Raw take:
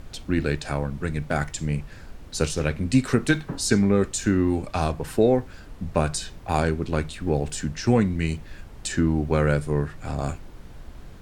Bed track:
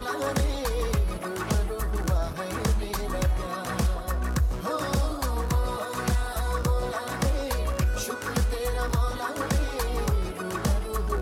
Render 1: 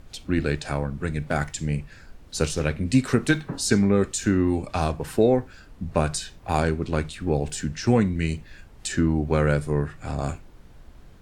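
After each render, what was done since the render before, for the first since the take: noise print and reduce 6 dB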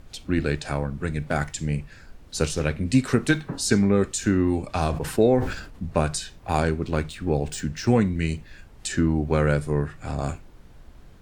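4.81–5.86 s: decay stretcher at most 72 dB/s; 6.86–7.88 s: median filter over 3 samples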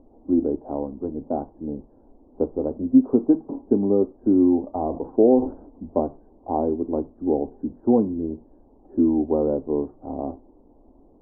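steep low-pass 920 Hz 48 dB/octave; resonant low shelf 200 Hz -10 dB, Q 3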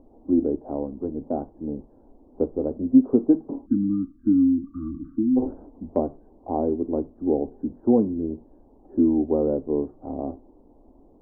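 3.66–5.37 s: spectral selection erased 340–1100 Hz; dynamic bell 940 Hz, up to -5 dB, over -41 dBFS, Q 1.7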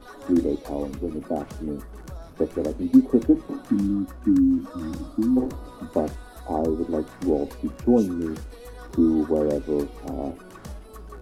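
add bed track -13.5 dB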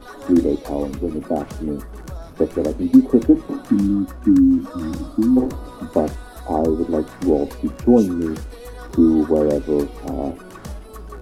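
trim +5.5 dB; peak limiter -2 dBFS, peak gain reduction 2 dB

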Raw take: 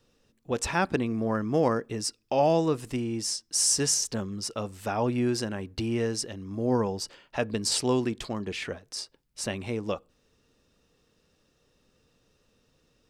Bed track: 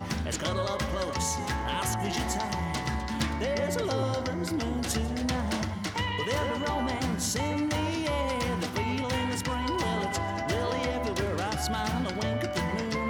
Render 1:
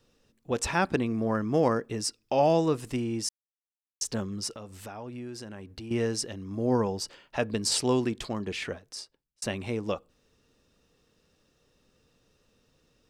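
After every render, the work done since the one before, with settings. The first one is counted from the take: 3.29–4.01 s: mute; 4.55–5.91 s: compression 3:1, threshold -41 dBFS; 8.69–9.42 s: fade out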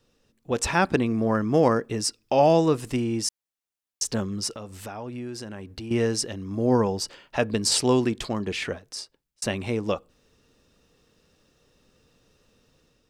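level rider gain up to 4.5 dB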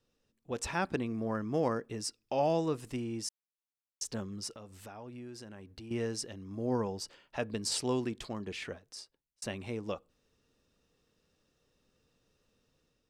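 trim -11 dB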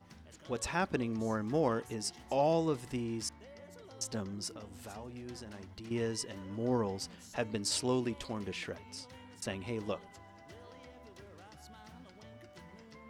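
add bed track -24 dB

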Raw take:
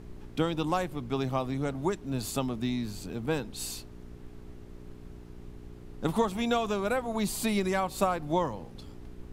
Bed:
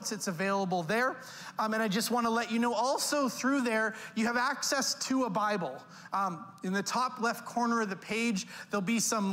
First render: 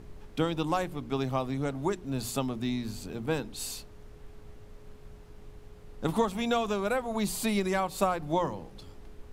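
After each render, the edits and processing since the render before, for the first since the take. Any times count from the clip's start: de-hum 60 Hz, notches 6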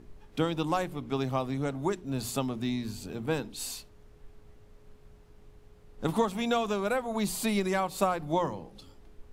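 noise print and reduce 6 dB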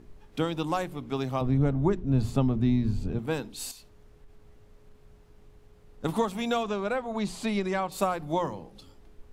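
1.41–3.19 s: RIAA curve playback; 3.71–6.04 s: compression 4:1, threshold -46 dBFS; 6.63–7.92 s: distance through air 78 m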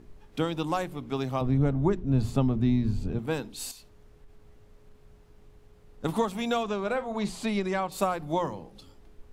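6.79–7.30 s: doubling 48 ms -13 dB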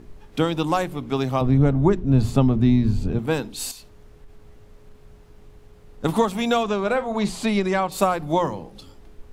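trim +7 dB

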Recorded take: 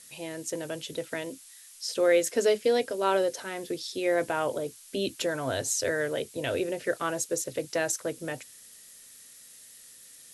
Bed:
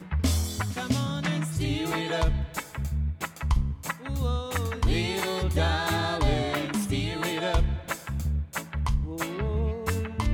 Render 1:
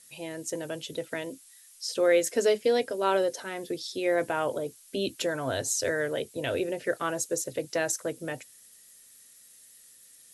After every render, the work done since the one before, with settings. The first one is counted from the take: noise reduction 6 dB, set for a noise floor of -51 dBFS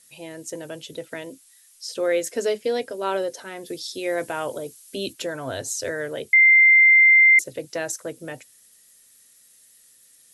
3.66–5.13 s: treble shelf 3.7 kHz +7 dB; 6.33–7.39 s: bleep 2.09 kHz -10 dBFS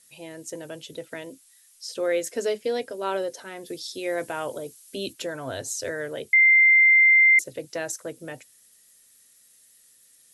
trim -2.5 dB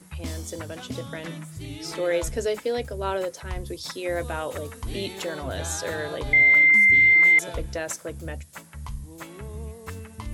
add bed -9 dB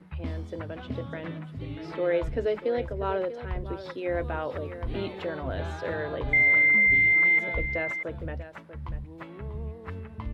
distance through air 400 m; delay 641 ms -12.5 dB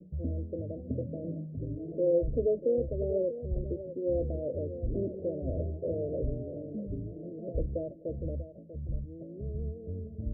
steep low-pass 630 Hz 96 dB/octave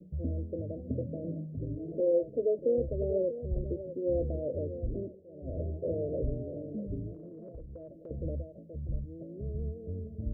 2.00–2.59 s: high-pass 290 Hz; 4.80–5.71 s: dip -23 dB, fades 0.44 s; 7.14–8.11 s: compression 5:1, threshold -43 dBFS

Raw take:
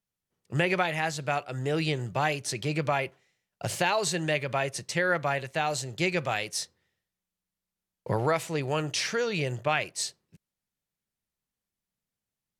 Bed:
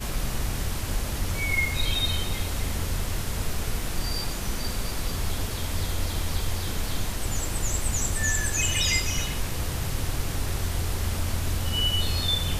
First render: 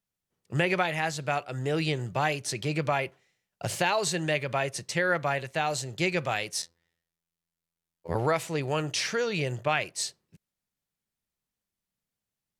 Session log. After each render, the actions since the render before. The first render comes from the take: 6.62–8.15 s: robot voice 84.2 Hz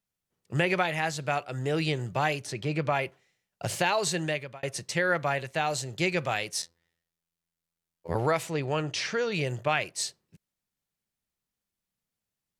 2.45–2.94 s: treble shelf 3.3 kHz -> 6.6 kHz -10 dB; 4.21–4.63 s: fade out; 8.50–9.32 s: distance through air 66 m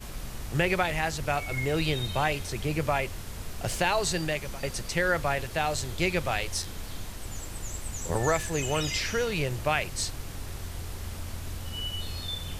add bed -9.5 dB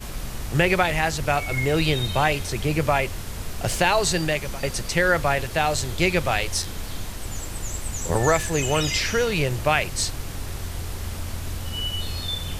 trim +6 dB

